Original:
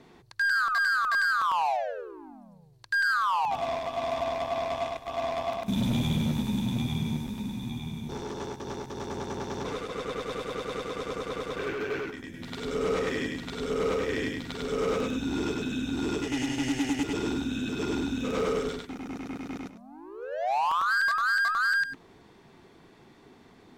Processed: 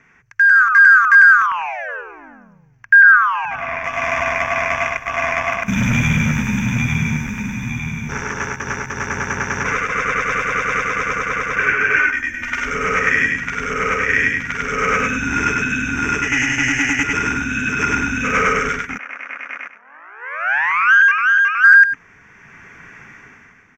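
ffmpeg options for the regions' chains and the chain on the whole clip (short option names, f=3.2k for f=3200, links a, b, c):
-filter_complex "[0:a]asettb=1/sr,asplit=3[a][b][c];[a]atrim=end=1.464[d];[b]atrim=start=1.46:end=3.84,asetpts=PTS-STARTPTS,afade=t=in:d=0.004:c=qsin,afade=t=out:st=2.376:d=0.004:c=qsin,acrossover=split=3300[e][f];[f]acompressor=threshold=-53dB:ratio=4:attack=1:release=60[g];[e][g]amix=inputs=2:normalize=0,equalizer=f=9.4k:t=o:w=0.75:g=-13.5,aecho=1:1:426:0.0631,atrim=end_sample=104958[h];[c]atrim=start=3.836[i];[d][h]acrossfade=d=0.004:c1=hsin:c2=qsin[j];[j][i]acrossfade=d=0.004:c1=qsin:c2=hsin,asettb=1/sr,asplit=3[k][l][m];[k]atrim=end=11.964[n];[l]atrim=start=11.96:end=12.68,asetpts=PTS-STARTPTS,afade=t=in:d=0.004:c=qsin,afade=t=out:st=0.716:d=0.004:c=qsin,equalizer=f=160:t=o:w=1.9:g=-7.5,aecho=1:1:3.3:0.92,atrim=end_sample=31752[o];[m]atrim=start=12.676[p];[n][o]acrossfade=d=0.004:c1=hsin:c2=qsin[q];[q][p]acrossfade=d=0.004:c1=qsin:c2=hsin,asettb=1/sr,asplit=3[r][s][t];[r]atrim=end=18.984[u];[s]atrim=start=18.98:end=21.64,asetpts=PTS-STARTPTS,afade=t=in:d=0.004:c=qsin,afade=t=out:st=2.656:d=0.004:c=qsin,aeval=exprs='max(val(0),0)':c=same,highpass=680,lowpass=2.9k[v];[t]atrim=start=21.636[w];[u][v]acrossfade=d=0.004:c1=hsin:c2=qsin[x];[x][w]acrossfade=d=0.004:c1=qsin:c2=hsin,firequalizer=gain_entry='entry(130,0);entry(260,-5);entry(760,-6);entry(1500,14);entry(2400,12);entry(4000,-20);entry(6000,8);entry(9100,-16);entry(14000,-6)':delay=0.05:min_phase=1,dynaudnorm=f=110:g=11:m=13dB,equalizer=f=350:t=o:w=0.25:g=-8.5,volume=-1dB"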